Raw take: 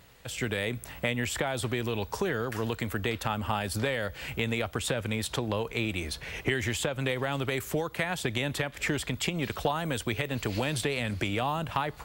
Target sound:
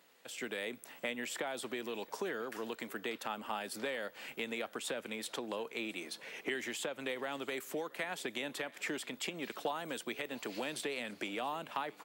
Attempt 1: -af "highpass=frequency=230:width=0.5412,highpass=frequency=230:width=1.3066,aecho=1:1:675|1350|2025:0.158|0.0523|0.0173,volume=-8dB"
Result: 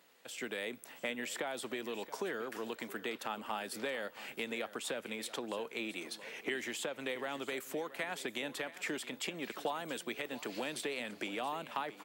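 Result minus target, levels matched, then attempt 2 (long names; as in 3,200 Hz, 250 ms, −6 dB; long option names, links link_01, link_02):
echo-to-direct +7.5 dB
-af "highpass=frequency=230:width=0.5412,highpass=frequency=230:width=1.3066,aecho=1:1:675|1350:0.0668|0.0221,volume=-8dB"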